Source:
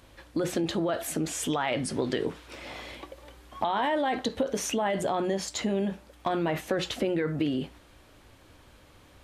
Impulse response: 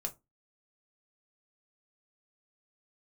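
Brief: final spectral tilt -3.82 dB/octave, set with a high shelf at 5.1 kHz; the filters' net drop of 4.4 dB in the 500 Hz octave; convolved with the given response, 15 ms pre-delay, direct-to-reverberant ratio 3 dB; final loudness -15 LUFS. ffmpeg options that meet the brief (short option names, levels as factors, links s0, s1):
-filter_complex "[0:a]equalizer=f=500:t=o:g=-6,highshelf=f=5100:g=3.5,asplit=2[s0][s1];[1:a]atrim=start_sample=2205,adelay=15[s2];[s1][s2]afir=irnorm=-1:irlink=0,volume=0.708[s3];[s0][s3]amix=inputs=2:normalize=0,volume=5.31"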